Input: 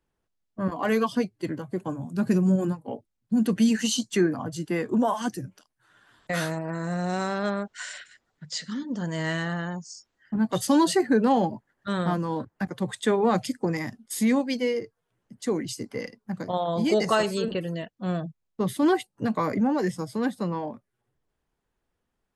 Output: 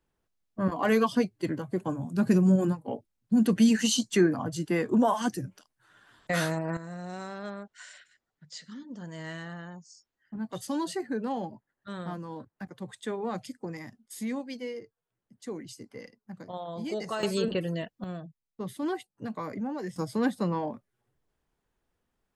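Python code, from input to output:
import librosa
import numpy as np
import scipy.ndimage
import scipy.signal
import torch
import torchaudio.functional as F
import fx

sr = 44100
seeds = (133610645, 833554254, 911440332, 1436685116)

y = fx.gain(x, sr, db=fx.steps((0.0, 0.0), (6.77, -11.0), (17.23, -0.5), (18.04, -10.0), (19.96, 0.0)))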